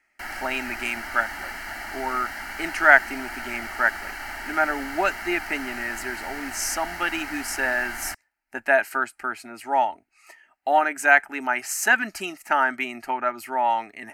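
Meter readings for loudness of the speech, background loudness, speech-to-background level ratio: -24.0 LUFS, -33.5 LUFS, 9.5 dB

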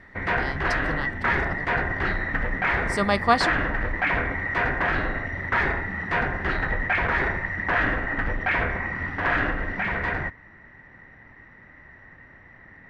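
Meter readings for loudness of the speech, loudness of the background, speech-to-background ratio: -28.0 LUFS, -25.0 LUFS, -3.0 dB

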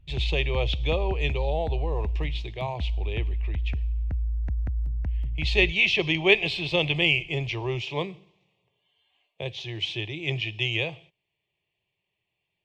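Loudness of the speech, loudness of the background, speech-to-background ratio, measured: -26.5 LUFS, -30.5 LUFS, 4.0 dB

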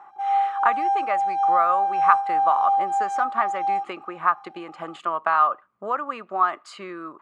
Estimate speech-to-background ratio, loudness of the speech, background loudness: -2.0 dB, -25.0 LUFS, -23.0 LUFS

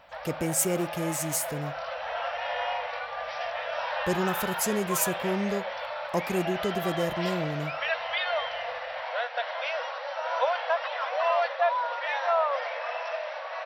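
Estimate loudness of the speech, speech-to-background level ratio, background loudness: -30.0 LUFS, 1.0 dB, -31.0 LUFS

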